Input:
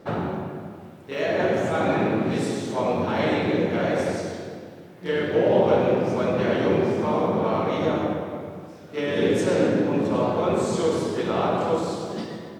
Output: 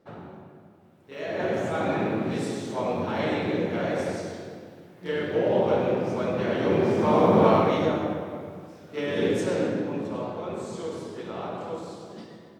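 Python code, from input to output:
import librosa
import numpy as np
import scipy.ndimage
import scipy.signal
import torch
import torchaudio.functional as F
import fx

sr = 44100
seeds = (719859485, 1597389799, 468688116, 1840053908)

y = fx.gain(x, sr, db=fx.line((0.81, -15.0), (1.53, -4.0), (6.53, -4.0), (7.45, 6.0), (7.99, -3.0), (9.26, -3.0), (10.45, -11.0)))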